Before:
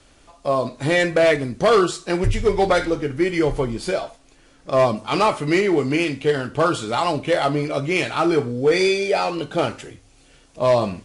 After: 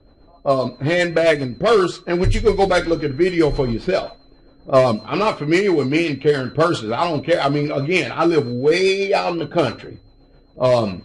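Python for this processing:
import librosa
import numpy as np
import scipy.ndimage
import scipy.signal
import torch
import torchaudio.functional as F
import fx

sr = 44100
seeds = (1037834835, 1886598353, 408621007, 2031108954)

p1 = x + 10.0 ** (-41.0 / 20.0) * np.sin(2.0 * np.pi * 4100.0 * np.arange(len(x)) / sr)
p2 = fx.rider(p1, sr, range_db=10, speed_s=0.5)
p3 = p1 + (p2 * 10.0 ** (1.0 / 20.0))
p4 = fx.rotary(p3, sr, hz=7.5)
p5 = fx.env_lowpass(p4, sr, base_hz=740.0, full_db=-8.0)
y = p5 * 10.0 ** (-2.5 / 20.0)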